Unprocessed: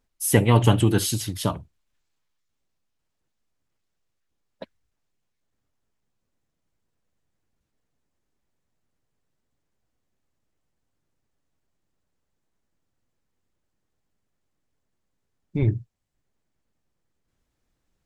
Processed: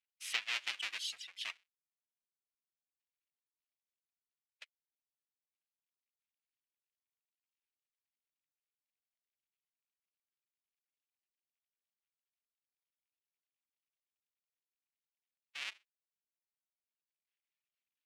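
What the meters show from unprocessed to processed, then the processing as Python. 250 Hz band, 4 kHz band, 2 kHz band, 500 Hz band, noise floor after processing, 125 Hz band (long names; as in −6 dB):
below −40 dB, −6.5 dB, −6.5 dB, −39.0 dB, below −85 dBFS, below −40 dB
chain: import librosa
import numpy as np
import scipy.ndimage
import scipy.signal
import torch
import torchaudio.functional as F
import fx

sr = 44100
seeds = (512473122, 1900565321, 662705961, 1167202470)

y = fx.halfwave_hold(x, sr)
y = fx.dereverb_blind(y, sr, rt60_s=1.2)
y = fx.ladder_bandpass(y, sr, hz=3000.0, resonance_pct=45)
y = y * librosa.db_to_amplitude(-1.0)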